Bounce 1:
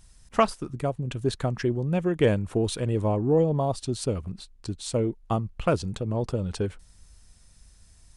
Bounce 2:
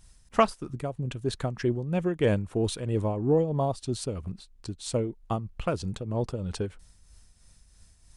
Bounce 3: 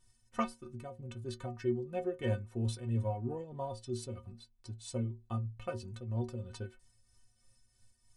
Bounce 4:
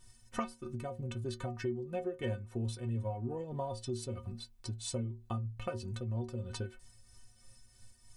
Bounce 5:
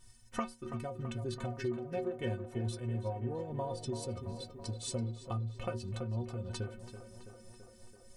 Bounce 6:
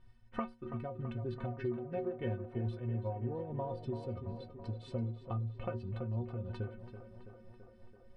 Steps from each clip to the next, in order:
tremolo triangle 3.1 Hz, depth 55%
metallic resonator 110 Hz, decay 0.32 s, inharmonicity 0.03
compressor 3:1, threshold -46 dBFS, peak gain reduction 14 dB; gain +9 dB
tape echo 0.332 s, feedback 76%, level -9 dB, low-pass 2900 Hz
air absorption 430 m

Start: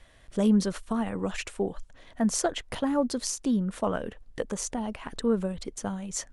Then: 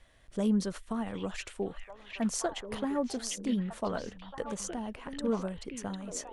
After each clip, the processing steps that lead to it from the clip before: delay with a stepping band-pass 0.75 s, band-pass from 2700 Hz, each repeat -1.4 oct, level -1 dB; gain -5.5 dB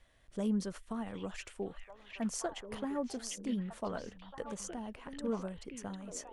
dynamic EQ 3900 Hz, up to -4 dB, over -59 dBFS, Q 4.5; gain -5 dB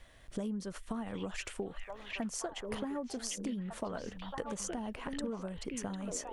compressor 12:1, threshold -43 dBFS, peak gain reduction 15 dB; gain +8.5 dB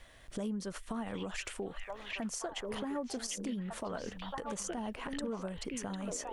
low shelf 360 Hz -3.5 dB; limiter -31 dBFS, peak gain reduction 11 dB; gain +3 dB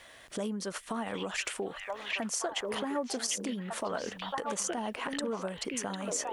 HPF 380 Hz 6 dB/oct; gain +7 dB

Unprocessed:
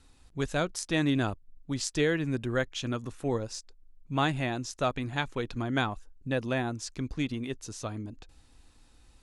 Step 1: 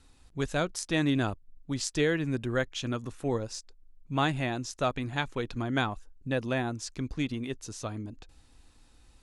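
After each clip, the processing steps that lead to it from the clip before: nothing audible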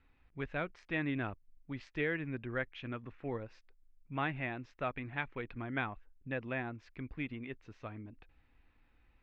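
ladder low-pass 2600 Hz, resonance 50%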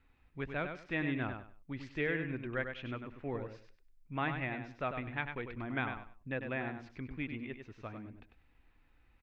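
feedback echo 98 ms, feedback 23%, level -7 dB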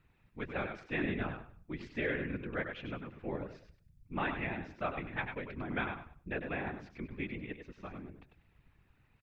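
whisperiser; outdoor echo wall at 34 m, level -27 dB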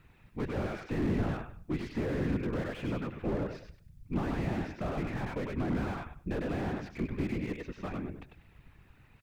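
slew limiter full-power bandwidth 4.6 Hz; gain +9 dB

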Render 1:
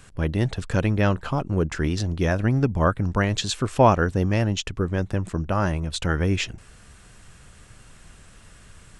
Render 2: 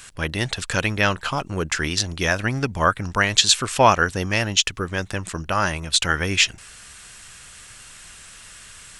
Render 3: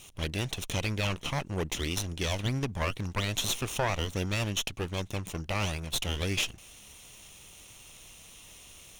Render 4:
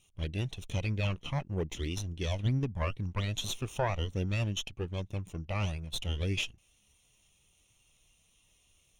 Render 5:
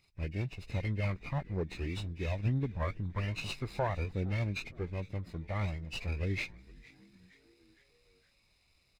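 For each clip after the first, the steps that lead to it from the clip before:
tilt shelf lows -9 dB; gain +4 dB
minimum comb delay 0.32 ms; limiter -13 dBFS, peak gain reduction 10.5 dB; gain -6 dB
spectral expander 1.5:1
nonlinear frequency compression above 1500 Hz 1.5:1; frequency-shifting echo 0.463 s, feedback 52%, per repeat -140 Hz, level -21.5 dB; running maximum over 3 samples; gain -1.5 dB

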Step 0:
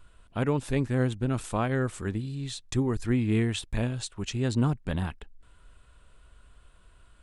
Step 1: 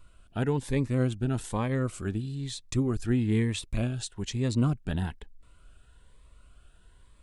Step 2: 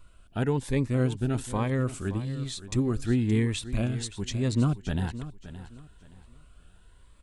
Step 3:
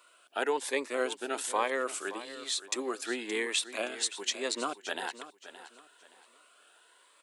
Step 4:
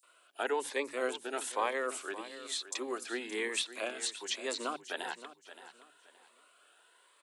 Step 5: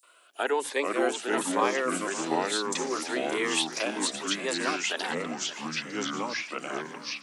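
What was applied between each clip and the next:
cascading phaser rising 1.1 Hz
feedback echo 0.571 s, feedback 28%, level -14 dB; gain +1 dB
Bessel high-pass 610 Hz, order 6; gain +5.5 dB
three bands offset in time highs, mids, lows 30/100 ms, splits 190/5800 Hz; gain -2.5 dB
echoes that change speed 0.335 s, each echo -4 st, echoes 2; gain +5.5 dB

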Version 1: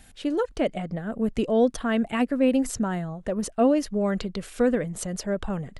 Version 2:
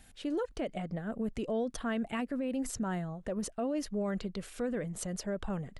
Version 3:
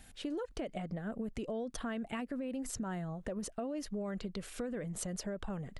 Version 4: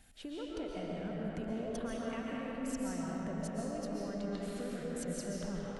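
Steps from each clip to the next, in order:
limiter -20.5 dBFS, peak gain reduction 9.5 dB; gain -6 dB
compressor, threshold -37 dBFS, peak gain reduction 8 dB; gain +1.5 dB
digital reverb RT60 4.4 s, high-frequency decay 0.6×, pre-delay 95 ms, DRR -5 dB; gain -6 dB

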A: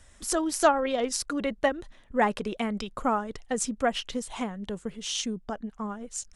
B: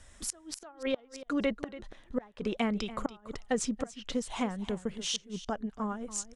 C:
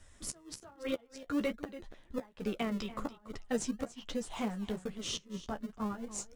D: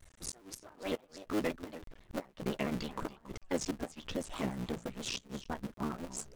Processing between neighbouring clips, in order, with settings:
treble ducked by the level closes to 2800 Hz, closed at -20 dBFS; flipped gate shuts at -18 dBFS, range -30 dB; echo 0.285 s -15.5 dB
flange 1.2 Hz, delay 9.3 ms, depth 6.7 ms, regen -20%; in parallel at -11 dB: decimation with a swept rate 39×, swing 100% 0.42 Hz; on the sum: gain -1.5 dB
cycle switcher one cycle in 3, muted; shaped vibrato square 6 Hz, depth 160 cents; gain +1 dB

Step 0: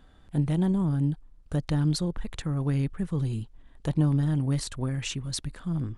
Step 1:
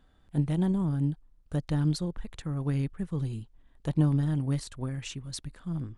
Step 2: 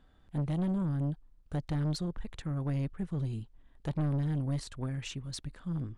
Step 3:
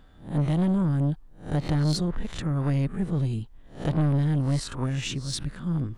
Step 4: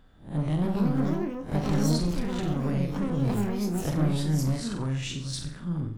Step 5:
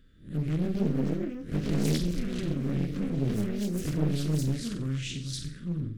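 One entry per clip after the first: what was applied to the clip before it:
upward expander 1.5:1, over -34 dBFS
high shelf 8300 Hz -8.5 dB; soft clip -27 dBFS, distortion -10 dB
spectral swells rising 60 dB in 0.36 s; gain +7.5 dB
on a send: flutter echo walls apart 7.8 m, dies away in 0.45 s; on the sum: echoes that change speed 0.392 s, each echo +5 st, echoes 2; gain -4 dB
Butterworth band-stop 830 Hz, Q 0.75; Doppler distortion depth 0.83 ms; gain -1.5 dB

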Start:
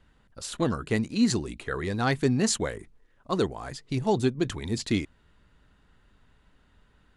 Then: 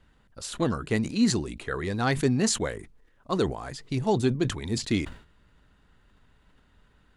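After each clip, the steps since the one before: sustainer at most 120 dB/s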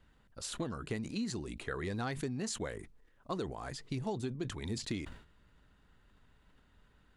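compressor 10:1, threshold -29 dBFS, peak gain reduction 12 dB; gain -4.5 dB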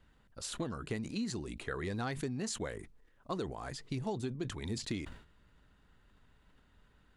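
nothing audible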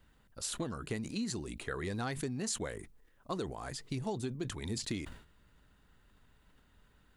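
high shelf 9500 Hz +11.5 dB

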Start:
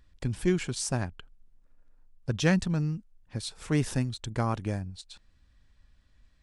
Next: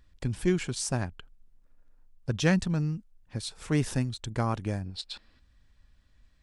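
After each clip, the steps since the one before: spectral gain 4.85–5.39, 200–5500 Hz +9 dB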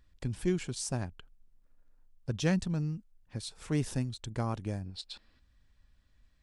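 dynamic EQ 1600 Hz, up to -4 dB, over -46 dBFS, Q 0.8; gain -4 dB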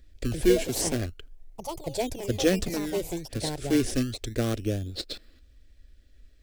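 in parallel at -3 dB: decimation with a swept rate 24×, swing 100% 0.35 Hz; on the sum: fixed phaser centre 380 Hz, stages 4; echoes that change speed 0.152 s, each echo +5 st, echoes 2, each echo -6 dB; gain +7.5 dB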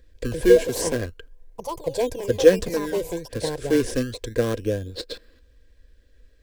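small resonant body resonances 490/1000/1600 Hz, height 14 dB, ringing for 45 ms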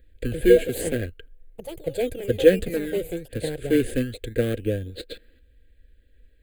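in parallel at -8 dB: crossover distortion -34.5 dBFS; on the sum: fixed phaser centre 2400 Hz, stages 4; gain -1 dB

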